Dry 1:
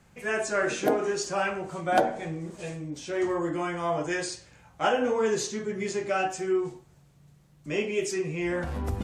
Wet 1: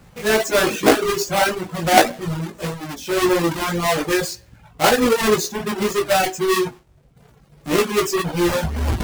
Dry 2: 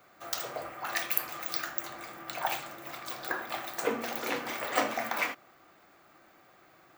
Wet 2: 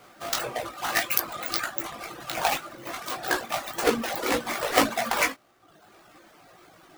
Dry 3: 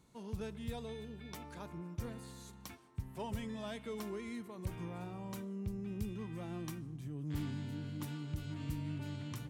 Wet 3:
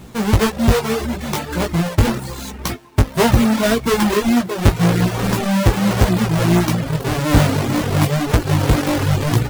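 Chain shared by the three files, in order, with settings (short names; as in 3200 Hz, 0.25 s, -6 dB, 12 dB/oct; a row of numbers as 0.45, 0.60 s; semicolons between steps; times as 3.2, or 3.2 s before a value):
half-waves squared off; chorus 1.8 Hz, delay 16.5 ms, depth 2.6 ms; reverb removal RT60 0.86 s; normalise peaks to -2 dBFS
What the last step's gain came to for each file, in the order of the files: +9.5, +7.0, +26.5 dB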